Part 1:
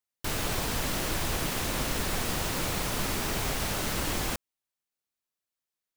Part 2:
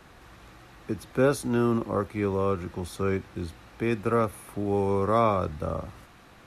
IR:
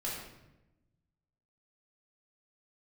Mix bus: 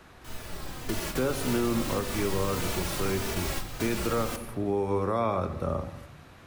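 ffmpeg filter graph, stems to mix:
-filter_complex "[0:a]asplit=2[link_01][link_02];[link_02]adelay=3.2,afreqshift=-1.7[link_03];[link_01][link_03]amix=inputs=2:normalize=1,volume=0dB,asplit=2[link_04][link_05];[link_05]volume=-11dB[link_06];[1:a]volume=-1.5dB,asplit=3[link_07][link_08][link_09];[link_08]volume=-11.5dB[link_10];[link_09]apad=whole_len=263160[link_11];[link_04][link_11]sidechaingate=range=-33dB:threshold=-46dB:ratio=16:detection=peak[link_12];[2:a]atrim=start_sample=2205[link_13];[link_06][link_10]amix=inputs=2:normalize=0[link_14];[link_14][link_13]afir=irnorm=-1:irlink=0[link_15];[link_12][link_07][link_15]amix=inputs=3:normalize=0,alimiter=limit=-17.5dB:level=0:latency=1:release=211"

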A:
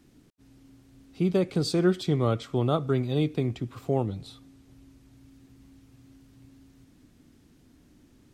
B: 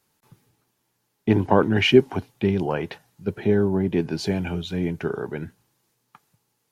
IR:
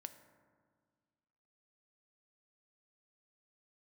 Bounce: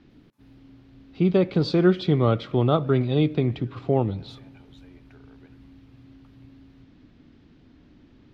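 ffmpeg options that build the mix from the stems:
-filter_complex "[0:a]lowpass=frequency=4200:width=0.5412,lowpass=frequency=4200:width=1.3066,volume=3dB,asplit=2[link_01][link_02];[link_02]volume=-9dB[link_03];[1:a]highpass=490,acompressor=threshold=-38dB:ratio=3,adelay=100,volume=-19.5dB,asplit=2[link_04][link_05];[link_05]volume=-3.5dB[link_06];[2:a]atrim=start_sample=2205[link_07];[link_03][link_06]amix=inputs=2:normalize=0[link_08];[link_08][link_07]afir=irnorm=-1:irlink=0[link_09];[link_01][link_04][link_09]amix=inputs=3:normalize=0"

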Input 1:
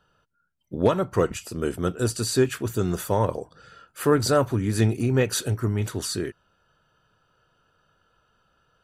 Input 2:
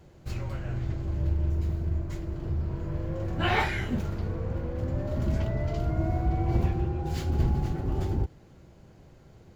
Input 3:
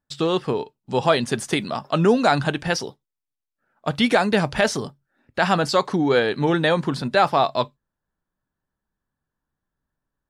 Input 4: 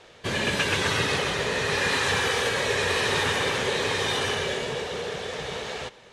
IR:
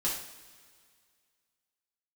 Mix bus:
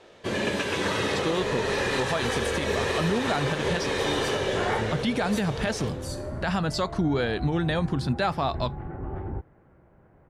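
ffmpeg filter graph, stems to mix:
-filter_complex "[0:a]acrossover=split=560[link_01][link_02];[link_01]aeval=exprs='val(0)*(1-0.7/2+0.7/2*cos(2*PI*2.7*n/s))':channel_layout=same[link_03];[link_02]aeval=exprs='val(0)*(1-0.7/2-0.7/2*cos(2*PI*2.7*n/s))':channel_layout=same[link_04];[link_03][link_04]amix=inputs=2:normalize=0,volume=-12dB,asplit=2[link_05][link_06];[link_06]volume=-11dB[link_07];[1:a]lowpass=frequency=1800:width=0.5412,lowpass=frequency=1800:width=1.3066,lowshelf=frequency=450:gain=-9,adelay=1150,volume=2.5dB[link_08];[2:a]asubboost=boost=2.5:cutoff=240,adelay=1050,volume=-2dB[link_09];[3:a]equalizer=frequency=370:width_type=o:width=2.8:gain=7.5,dynaudnorm=framelen=570:gausssize=5:maxgain=4.5dB,volume=-8.5dB,asplit=2[link_10][link_11];[link_11]volume=-8.5dB[link_12];[4:a]atrim=start_sample=2205[link_13];[link_07][link_12]amix=inputs=2:normalize=0[link_14];[link_14][link_13]afir=irnorm=-1:irlink=0[link_15];[link_05][link_08][link_09][link_10][link_15]amix=inputs=5:normalize=0,alimiter=limit=-16dB:level=0:latency=1:release=255"

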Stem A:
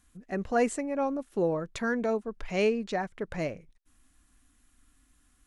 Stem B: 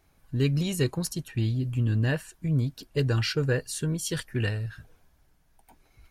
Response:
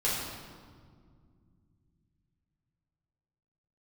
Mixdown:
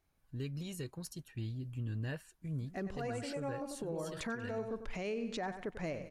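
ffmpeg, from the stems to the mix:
-filter_complex "[0:a]acontrast=53,adelay=2450,volume=-2dB,asplit=2[link_01][link_02];[link_02]volume=-15dB[link_03];[1:a]volume=-13.5dB,asplit=2[link_04][link_05];[link_05]apad=whole_len=348894[link_06];[link_01][link_06]sidechaincompress=threshold=-49dB:ratio=8:attack=11:release=179[link_07];[link_03]aecho=0:1:94|188|282|376|470:1|0.32|0.102|0.0328|0.0105[link_08];[link_07][link_04][link_08]amix=inputs=3:normalize=0,alimiter=level_in=6.5dB:limit=-24dB:level=0:latency=1:release=285,volume=-6.5dB"

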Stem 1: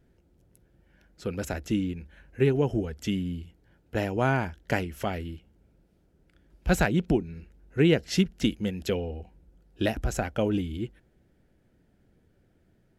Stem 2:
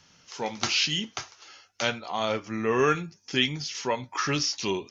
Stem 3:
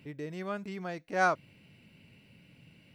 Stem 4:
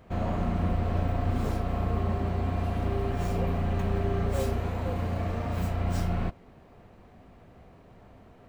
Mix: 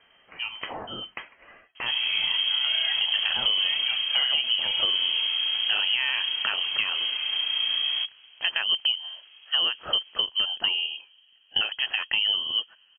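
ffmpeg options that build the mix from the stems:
ffmpeg -i stem1.wav -i stem2.wav -i stem3.wav -i stem4.wav -filter_complex "[0:a]highpass=160,adelay=1750,volume=2dB[link_01];[1:a]volume=2dB[link_02];[2:a]tiltshelf=frequency=970:gain=6.5,adelay=2450,volume=1.5dB[link_03];[3:a]adelay=1750,volume=-5dB[link_04];[link_01][link_04]amix=inputs=2:normalize=0,dynaudnorm=framelen=130:gausssize=9:maxgain=6.5dB,alimiter=limit=-11.5dB:level=0:latency=1:release=174,volume=0dB[link_05];[link_02][link_03]amix=inputs=2:normalize=0,acompressor=threshold=-28dB:ratio=6,volume=0dB[link_06];[link_05][link_06]amix=inputs=2:normalize=0,lowpass=frequency=2800:width_type=q:width=0.5098,lowpass=frequency=2800:width_type=q:width=0.6013,lowpass=frequency=2800:width_type=q:width=0.9,lowpass=frequency=2800:width_type=q:width=2.563,afreqshift=-3300,acompressor=threshold=-20dB:ratio=6" out.wav

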